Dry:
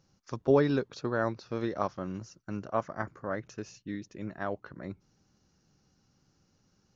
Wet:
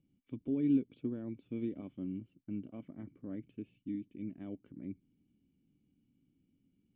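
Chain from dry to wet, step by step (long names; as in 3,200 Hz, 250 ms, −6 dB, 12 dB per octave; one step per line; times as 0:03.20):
brickwall limiter −20.5 dBFS, peak gain reduction 8.5 dB
formant resonators in series i
level +4 dB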